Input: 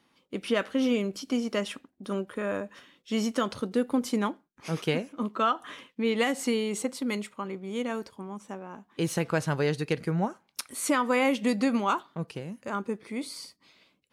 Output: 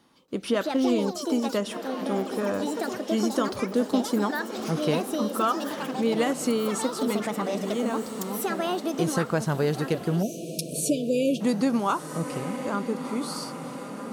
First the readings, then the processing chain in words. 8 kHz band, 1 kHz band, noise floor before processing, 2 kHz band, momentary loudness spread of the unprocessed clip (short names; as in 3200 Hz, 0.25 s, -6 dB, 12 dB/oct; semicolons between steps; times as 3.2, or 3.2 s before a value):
+4.5 dB, +2.0 dB, -71 dBFS, -1.0 dB, 14 LU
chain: echoes that change speed 0.281 s, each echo +5 st, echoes 3, each echo -6 dB; bell 2300 Hz -7.5 dB 0.96 oct; diffused feedback echo 1.366 s, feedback 46%, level -12 dB; spectral delete 10.22–11.41, 720–2300 Hz; in parallel at +1 dB: compressor, threshold -36 dBFS, peak gain reduction 15 dB